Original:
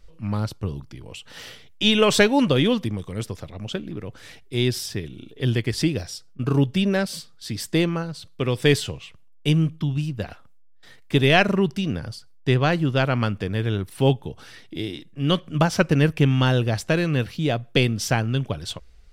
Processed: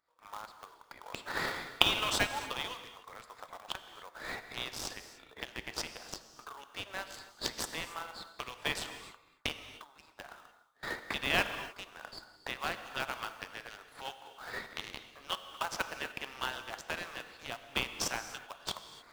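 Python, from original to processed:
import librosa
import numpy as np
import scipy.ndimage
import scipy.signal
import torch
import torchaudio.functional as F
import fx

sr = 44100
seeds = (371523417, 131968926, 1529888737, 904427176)

p1 = fx.wiener(x, sr, points=15)
p2 = fx.recorder_agc(p1, sr, target_db=-12.5, rise_db_per_s=60.0, max_gain_db=30)
p3 = scipy.signal.sosfilt(scipy.signal.butter(4, 940.0, 'highpass', fs=sr, output='sos'), p2)
p4 = fx.sample_hold(p3, sr, seeds[0], rate_hz=2300.0, jitter_pct=20)
p5 = p3 + (p4 * librosa.db_to_amplitude(-4.5))
p6 = fx.rev_gated(p5, sr, seeds[1], gate_ms=320, shape='flat', drr_db=9.0)
y = p6 * librosa.db_to_amplitude(-10.0)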